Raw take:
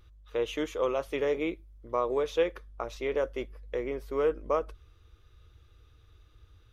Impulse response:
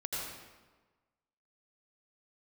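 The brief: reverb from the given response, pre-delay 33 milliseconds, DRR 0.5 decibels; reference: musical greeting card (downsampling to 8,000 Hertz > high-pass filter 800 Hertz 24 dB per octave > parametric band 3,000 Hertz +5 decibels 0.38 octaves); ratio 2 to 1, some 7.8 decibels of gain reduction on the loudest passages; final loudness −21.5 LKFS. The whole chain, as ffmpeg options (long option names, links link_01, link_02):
-filter_complex "[0:a]acompressor=threshold=-36dB:ratio=2,asplit=2[link_01][link_02];[1:a]atrim=start_sample=2205,adelay=33[link_03];[link_02][link_03]afir=irnorm=-1:irlink=0,volume=-4dB[link_04];[link_01][link_04]amix=inputs=2:normalize=0,aresample=8000,aresample=44100,highpass=frequency=800:width=0.5412,highpass=frequency=800:width=1.3066,equalizer=frequency=3000:width_type=o:width=0.38:gain=5,volume=21.5dB"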